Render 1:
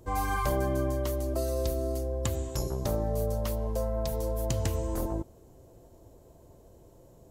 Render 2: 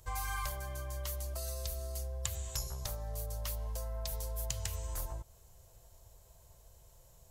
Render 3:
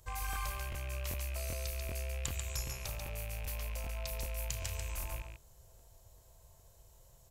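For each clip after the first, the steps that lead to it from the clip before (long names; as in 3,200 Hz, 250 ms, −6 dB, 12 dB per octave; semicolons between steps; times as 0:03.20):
downward compressor, threshold −31 dBFS, peak gain reduction 8 dB; guitar amp tone stack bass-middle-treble 10-0-10; level +5.5 dB
loose part that buzzes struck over −47 dBFS, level −34 dBFS; loudspeakers that aren't time-aligned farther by 12 metres −11 dB, 48 metres −5 dB; regular buffer underruns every 0.39 s, samples 1,024, repeat, from 0:00.31; level −2.5 dB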